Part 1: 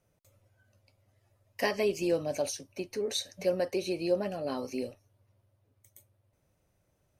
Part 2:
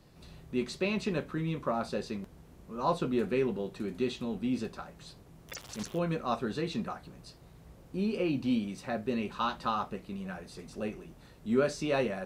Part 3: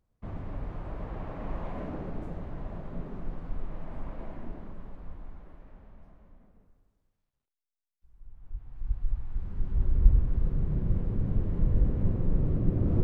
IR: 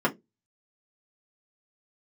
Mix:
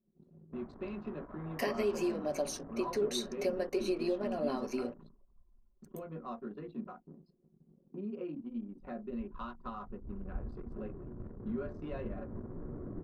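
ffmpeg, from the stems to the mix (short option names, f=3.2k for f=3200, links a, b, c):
-filter_complex "[0:a]acompressor=threshold=-33dB:ratio=6,volume=-1.5dB,asplit=2[a][b];[b]volume=-16dB[c];[1:a]acompressor=threshold=-43dB:ratio=3,volume=-12.5dB,asplit=3[d][e][f];[d]atrim=end=5.09,asetpts=PTS-STARTPTS,afade=t=out:st=5.086:d=0.004:c=hsin[g];[e]atrim=start=5.09:end=5.82,asetpts=PTS-STARTPTS,volume=0[h];[f]atrim=start=5.82,asetpts=PTS-STARTPTS,afade=t=in:d=0.004:c=hsin[i];[g][h][i]concat=n=3:v=0:a=1,asplit=2[j][k];[k]volume=-5dB[l];[2:a]lowpass=f=1.6k:t=q:w=2,lowshelf=f=110:g=-10,adelay=300,volume=-11dB,asplit=2[m][n];[n]volume=-19.5dB[o];[3:a]atrim=start_sample=2205[p];[c][l][o]amix=inputs=3:normalize=0[q];[q][p]afir=irnorm=-1:irlink=0[r];[a][j][m][r]amix=inputs=4:normalize=0,anlmdn=0.01"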